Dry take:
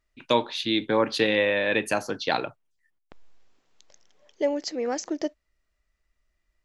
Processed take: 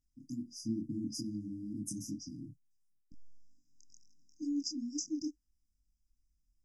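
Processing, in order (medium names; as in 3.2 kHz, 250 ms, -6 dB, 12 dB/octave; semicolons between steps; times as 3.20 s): peak limiter -15 dBFS, peak gain reduction 7 dB; chorus 2.2 Hz, delay 20 ms, depth 7.4 ms; brick-wall FIR band-stop 320–4800 Hz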